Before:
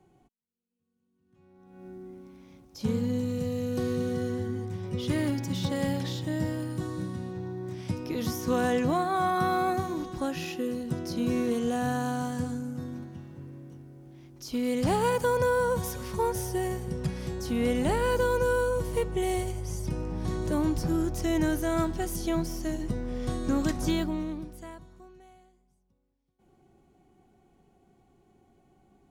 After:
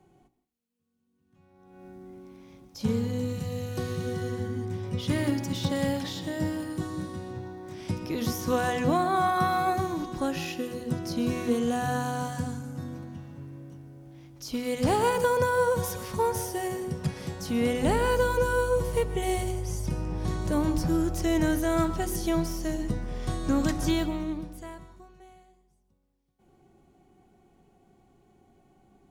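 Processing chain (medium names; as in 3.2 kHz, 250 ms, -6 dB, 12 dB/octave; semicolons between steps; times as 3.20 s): de-hum 61.54 Hz, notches 8; on a send: reverberation RT60 0.40 s, pre-delay 119 ms, DRR 14 dB; on the sum: trim +2 dB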